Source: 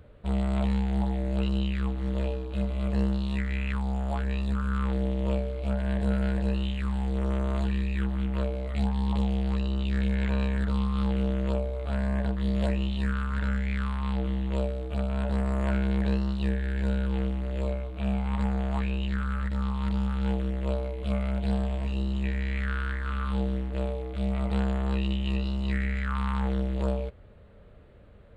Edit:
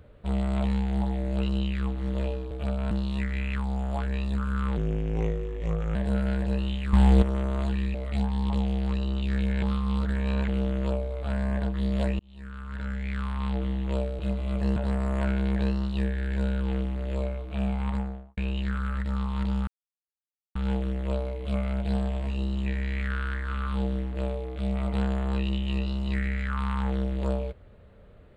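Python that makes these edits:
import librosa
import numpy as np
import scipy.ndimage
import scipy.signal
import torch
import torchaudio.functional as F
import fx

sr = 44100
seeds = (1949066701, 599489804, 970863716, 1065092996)

y = fx.studio_fade_out(x, sr, start_s=18.27, length_s=0.56)
y = fx.edit(y, sr, fx.swap(start_s=2.51, length_s=0.57, other_s=14.82, other_length_s=0.4),
    fx.speed_span(start_s=4.94, length_s=0.97, speed=0.82),
    fx.clip_gain(start_s=6.89, length_s=0.29, db=11.0),
    fx.cut(start_s=7.9, length_s=0.67),
    fx.reverse_span(start_s=10.25, length_s=0.86),
    fx.fade_in_span(start_s=12.82, length_s=1.19),
    fx.insert_silence(at_s=20.13, length_s=0.88), tone=tone)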